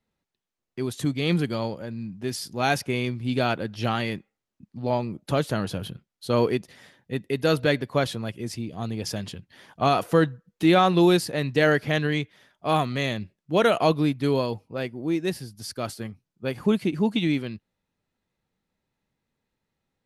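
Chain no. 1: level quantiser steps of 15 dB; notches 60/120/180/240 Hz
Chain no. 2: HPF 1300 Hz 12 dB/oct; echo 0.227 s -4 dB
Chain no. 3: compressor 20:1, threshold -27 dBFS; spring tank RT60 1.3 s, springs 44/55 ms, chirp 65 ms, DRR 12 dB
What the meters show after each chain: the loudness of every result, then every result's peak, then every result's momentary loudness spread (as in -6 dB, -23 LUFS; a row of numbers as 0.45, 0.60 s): -34.0, -32.0, -33.5 LUFS; -18.0, -12.0, -15.5 dBFS; 9, 14, 8 LU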